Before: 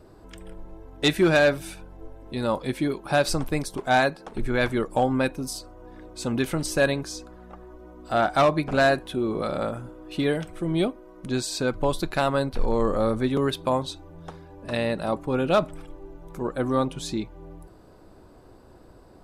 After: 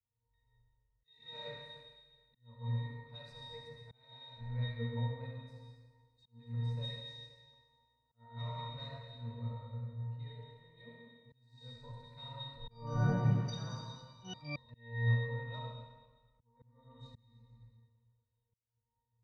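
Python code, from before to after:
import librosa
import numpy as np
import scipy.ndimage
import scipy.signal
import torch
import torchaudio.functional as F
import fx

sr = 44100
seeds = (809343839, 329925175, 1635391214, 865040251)

y = fx.tone_stack(x, sr, knobs='10-0-10')
y = fx.octave_resonator(y, sr, note='A#', decay_s=0.56)
y = fx.rev_freeverb(y, sr, rt60_s=2.4, hf_ratio=1.0, predelay_ms=20, drr_db=-2.5)
y = fx.echo_pitch(y, sr, ms=159, semitones=4, count=2, db_per_echo=-3.0, at=(12.55, 14.88))
y = fx.low_shelf(y, sr, hz=390.0, db=7.0)
y = fx.auto_swell(y, sr, attack_ms=429.0)
y = fx.band_widen(y, sr, depth_pct=70)
y = y * 10.0 ** (7.5 / 20.0)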